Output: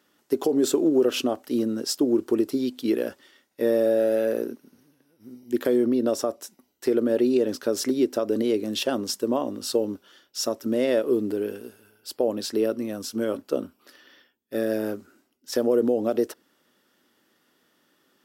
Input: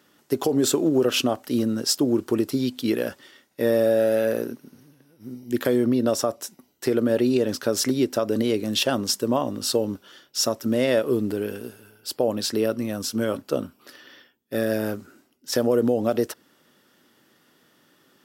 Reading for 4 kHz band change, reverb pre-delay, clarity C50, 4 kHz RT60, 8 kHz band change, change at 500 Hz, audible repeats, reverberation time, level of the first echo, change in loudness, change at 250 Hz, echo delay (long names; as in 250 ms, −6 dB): −5.5 dB, no reverb audible, no reverb audible, no reverb audible, −5.5 dB, −0.5 dB, no echo audible, no reverb audible, no echo audible, −1.5 dB, −1.0 dB, no echo audible